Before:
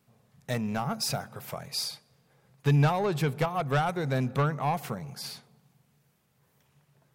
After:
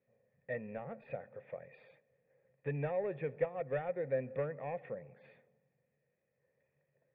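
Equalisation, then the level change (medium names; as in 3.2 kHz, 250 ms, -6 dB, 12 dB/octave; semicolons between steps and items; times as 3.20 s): cascade formant filter e; +2.5 dB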